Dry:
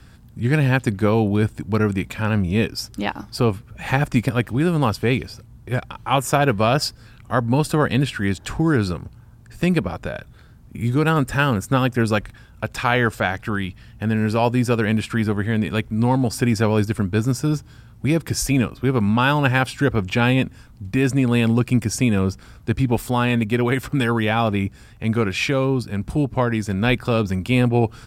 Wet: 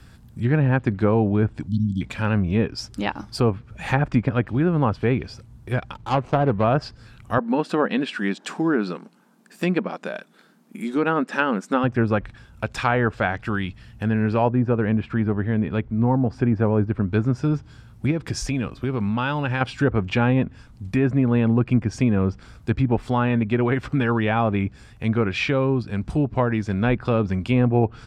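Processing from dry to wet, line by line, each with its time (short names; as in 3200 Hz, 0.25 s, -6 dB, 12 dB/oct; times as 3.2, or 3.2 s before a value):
1.68–2.01 spectral delete 280–3000 Hz
5.94–6.64 median filter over 25 samples
7.38–11.84 brick-wall FIR high-pass 170 Hz
14.49–17.08 LPF 1200 Hz 6 dB/oct
18.11–19.61 compressor 4:1, threshold -19 dBFS
whole clip: treble ducked by the level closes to 1500 Hz, closed at -14 dBFS; gain -1 dB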